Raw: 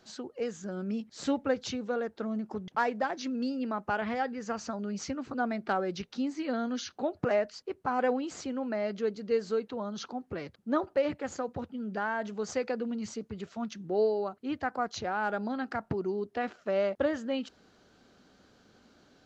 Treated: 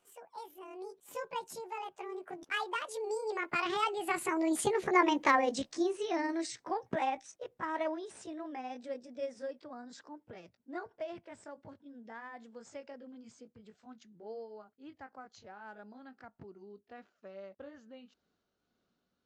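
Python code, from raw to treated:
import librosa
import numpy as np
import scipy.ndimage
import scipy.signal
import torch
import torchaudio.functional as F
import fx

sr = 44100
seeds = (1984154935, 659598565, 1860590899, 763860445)

y = fx.pitch_glide(x, sr, semitones=9.5, runs='ending unshifted')
y = fx.doppler_pass(y, sr, speed_mps=32, closest_m=21.0, pass_at_s=4.84)
y = y * librosa.db_to_amplitude(6.5)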